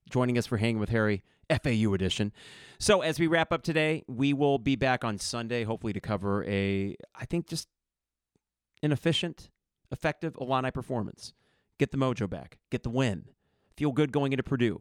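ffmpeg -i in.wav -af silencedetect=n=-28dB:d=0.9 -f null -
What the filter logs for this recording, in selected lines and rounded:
silence_start: 7.60
silence_end: 8.83 | silence_duration: 1.24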